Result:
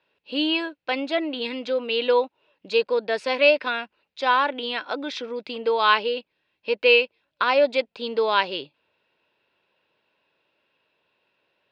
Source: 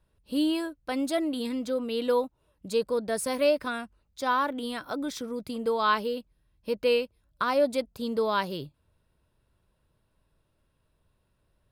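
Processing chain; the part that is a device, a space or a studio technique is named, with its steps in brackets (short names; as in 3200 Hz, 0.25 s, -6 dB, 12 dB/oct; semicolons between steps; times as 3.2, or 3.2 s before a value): phone earpiece (speaker cabinet 490–4300 Hz, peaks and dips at 650 Hz -4 dB, 1200 Hz -7 dB, 2600 Hz +8 dB); 1–1.42 high shelf 4000 Hz -7.5 dB; gain +9 dB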